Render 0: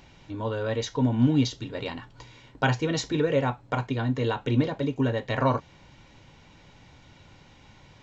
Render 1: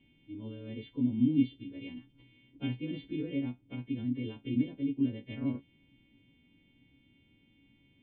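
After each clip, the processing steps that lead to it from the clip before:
every partial snapped to a pitch grid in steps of 2 semitones
formant resonators in series i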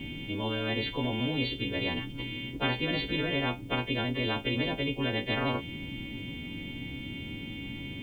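every bin compressed towards the loudest bin 4 to 1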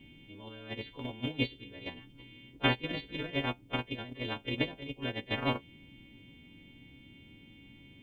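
noise gate −27 dBFS, range −20 dB
level +4 dB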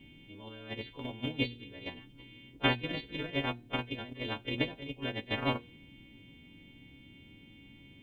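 hum removal 119.2 Hz, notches 39

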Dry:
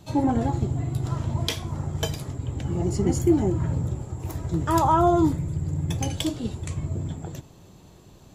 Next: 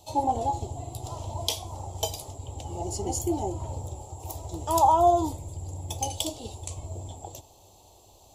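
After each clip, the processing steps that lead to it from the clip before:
drawn EQ curve 100 Hz 0 dB, 150 Hz −15 dB, 840 Hz +12 dB, 1,600 Hz −17 dB, 2,900 Hz +5 dB, 8,400 Hz +11 dB
level −6.5 dB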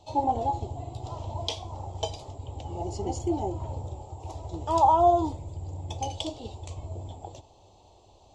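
Gaussian smoothing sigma 1.6 samples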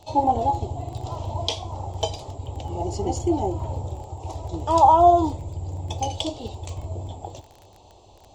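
surface crackle 15 per second −41 dBFS
level +5.5 dB

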